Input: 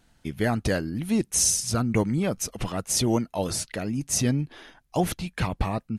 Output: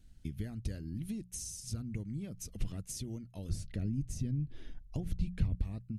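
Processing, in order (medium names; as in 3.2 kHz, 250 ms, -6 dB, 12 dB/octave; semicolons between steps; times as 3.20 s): compression 12:1, threshold -33 dBFS, peak gain reduction 16 dB; amplifier tone stack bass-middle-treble 10-0-1; hum notches 60/120/180 Hz; 3.49–5.55 s: tilt EQ -2 dB/octave; trim +13.5 dB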